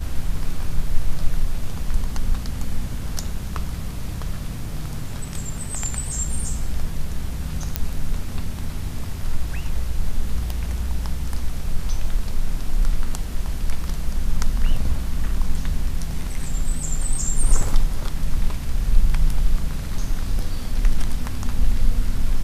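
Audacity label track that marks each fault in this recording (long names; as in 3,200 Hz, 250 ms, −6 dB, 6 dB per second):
7.760000	7.760000	click −4 dBFS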